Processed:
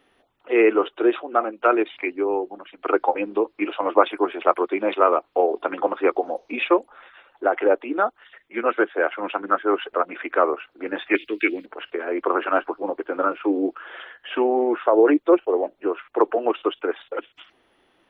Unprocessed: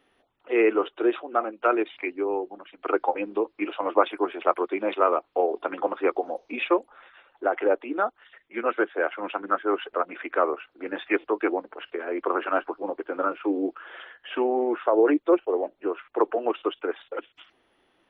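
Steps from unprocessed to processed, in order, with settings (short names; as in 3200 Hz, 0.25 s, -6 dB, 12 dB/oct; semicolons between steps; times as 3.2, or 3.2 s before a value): 11.15–11.66 EQ curve 310 Hz 0 dB, 920 Hz -27 dB, 2300 Hz +12 dB; gain +4 dB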